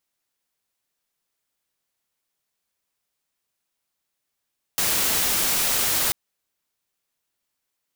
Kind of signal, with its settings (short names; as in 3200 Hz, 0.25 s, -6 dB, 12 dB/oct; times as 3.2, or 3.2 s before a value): noise white, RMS -22 dBFS 1.34 s